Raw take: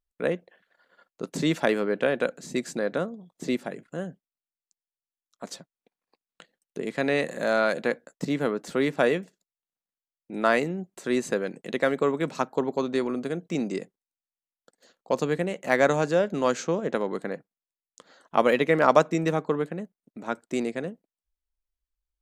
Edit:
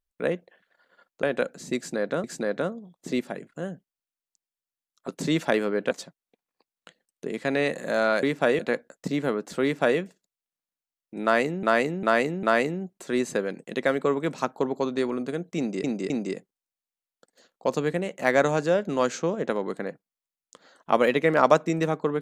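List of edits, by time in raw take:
1.23–2.06 s: move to 5.44 s
2.60–3.07 s: loop, 2 plays
8.80–9.16 s: copy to 7.76 s
10.40–10.80 s: loop, 4 plays
13.55–13.81 s: loop, 3 plays

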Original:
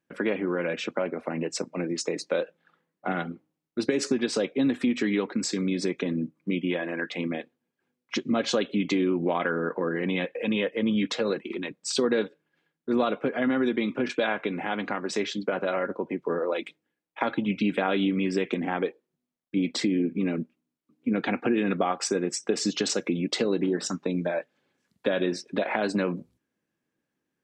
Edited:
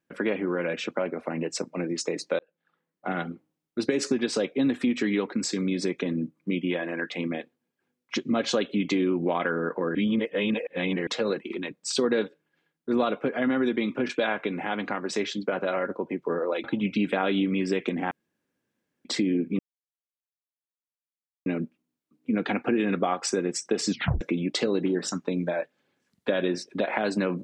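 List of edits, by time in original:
2.39–3.21 s: fade in
9.95–11.07 s: reverse
16.64–17.29 s: delete
18.76–19.70 s: room tone
20.24 s: insert silence 1.87 s
22.68 s: tape stop 0.31 s

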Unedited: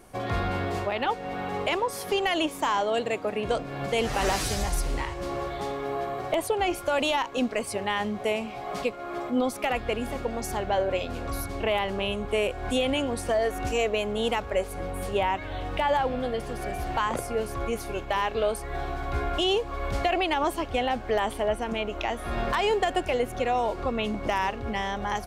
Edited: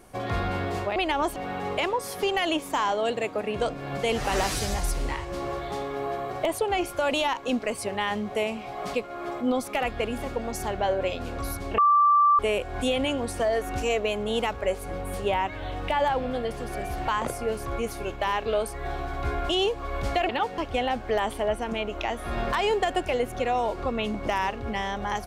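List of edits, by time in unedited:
0.96–1.25 s: swap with 20.18–20.58 s
11.67–12.28 s: bleep 1.17 kHz -15.5 dBFS

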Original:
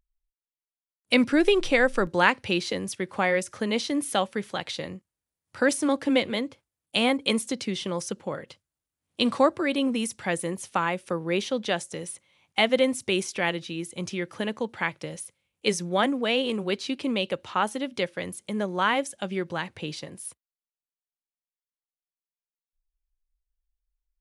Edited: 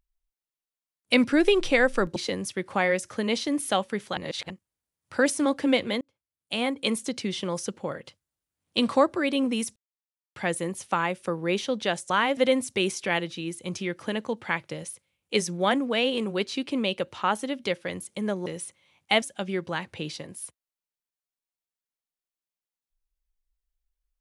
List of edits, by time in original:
2.16–2.59 s: delete
4.60–4.93 s: reverse
6.44–7.94 s: fade in equal-power
10.19 s: insert silence 0.60 s
11.93–12.69 s: swap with 18.78–19.05 s

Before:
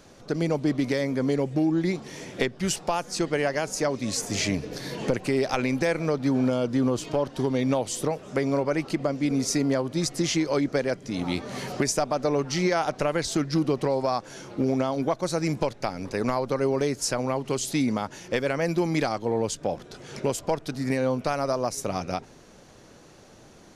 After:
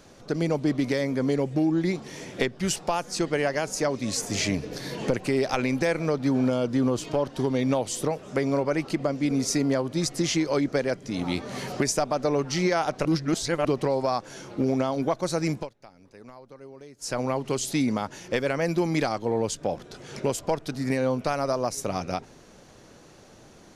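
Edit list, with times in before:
13.05–13.65 s: reverse
15.50–17.18 s: dip -20.5 dB, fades 0.20 s

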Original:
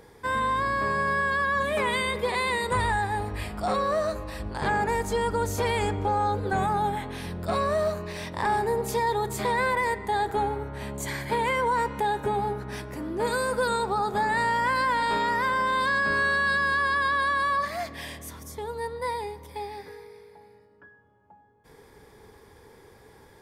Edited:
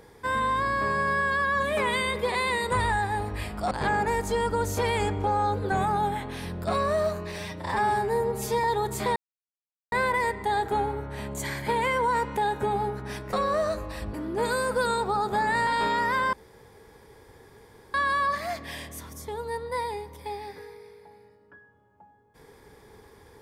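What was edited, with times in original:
3.71–4.52 s: move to 12.96 s
8.19–9.03 s: stretch 1.5×
9.55 s: insert silence 0.76 s
14.49–14.97 s: delete
15.63–17.24 s: room tone

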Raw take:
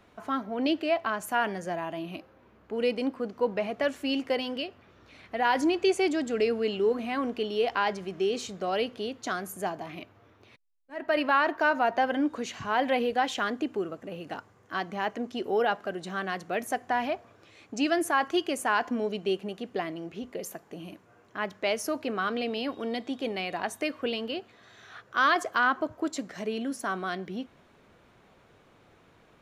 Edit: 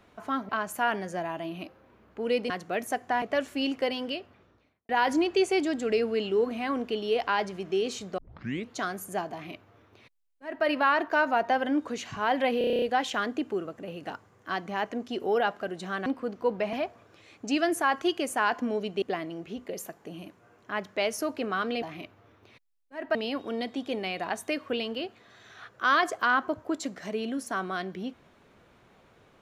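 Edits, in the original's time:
0.49–1.02 s: delete
3.03–3.70 s: swap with 16.30–17.02 s
4.65–5.37 s: studio fade out
8.66 s: tape start 0.53 s
9.80–11.13 s: copy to 22.48 s
13.06 s: stutter 0.03 s, 9 plays
19.31–19.68 s: delete

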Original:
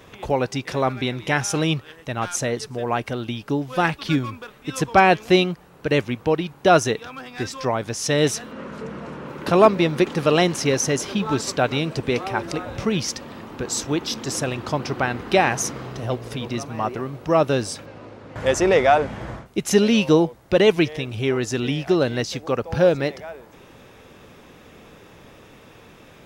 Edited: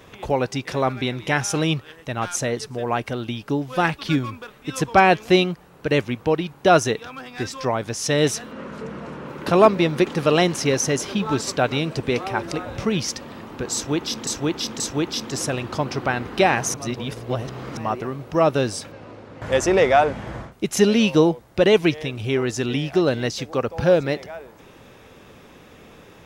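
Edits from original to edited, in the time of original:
13.74–14.27 s: loop, 3 plays
15.68–16.71 s: reverse

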